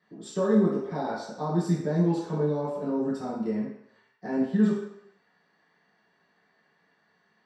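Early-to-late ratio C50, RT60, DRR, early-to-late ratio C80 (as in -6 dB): 2.0 dB, 0.75 s, -10.5 dB, 5.5 dB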